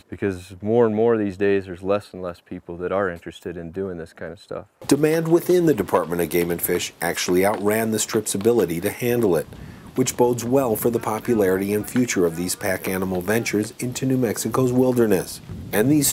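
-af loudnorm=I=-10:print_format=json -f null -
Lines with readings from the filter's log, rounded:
"input_i" : "-21.2",
"input_tp" : "-3.5",
"input_lra" : "2.5",
"input_thresh" : "-31.7",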